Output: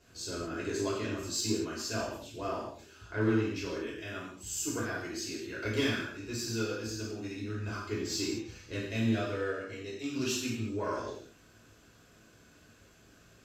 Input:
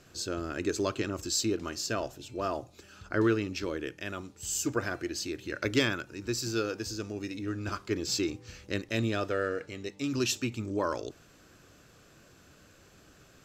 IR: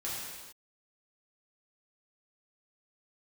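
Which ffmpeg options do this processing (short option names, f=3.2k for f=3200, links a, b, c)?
-filter_complex "[0:a]asoftclip=type=tanh:threshold=-18.5dB[a];[1:a]atrim=start_sample=2205,asetrate=83790,aresample=44100[b];[a][b]afir=irnorm=-1:irlink=0"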